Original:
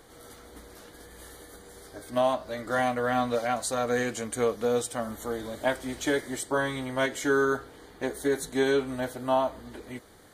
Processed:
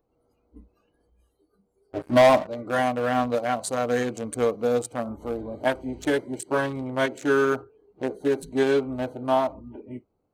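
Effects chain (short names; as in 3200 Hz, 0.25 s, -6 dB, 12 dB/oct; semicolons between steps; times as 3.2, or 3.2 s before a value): Wiener smoothing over 25 samples; spectral noise reduction 21 dB; 1.1–2.47 sample leveller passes 3; gain +3.5 dB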